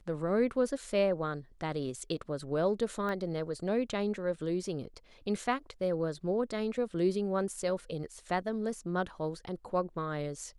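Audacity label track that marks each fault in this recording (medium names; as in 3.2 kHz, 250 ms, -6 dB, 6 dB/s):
3.090000	3.090000	pop -25 dBFS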